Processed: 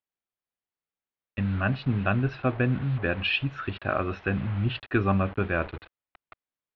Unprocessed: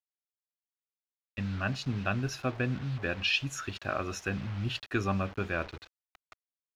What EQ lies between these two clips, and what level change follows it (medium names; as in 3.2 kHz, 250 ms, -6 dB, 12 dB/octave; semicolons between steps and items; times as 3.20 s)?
low-pass 4.2 kHz 24 dB/octave; distance through air 310 m; +7.0 dB